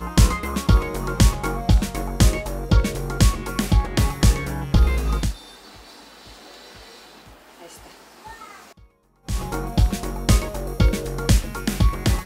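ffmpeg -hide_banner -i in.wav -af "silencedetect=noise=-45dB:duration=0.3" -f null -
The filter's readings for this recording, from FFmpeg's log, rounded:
silence_start: 8.85
silence_end: 9.27 | silence_duration: 0.41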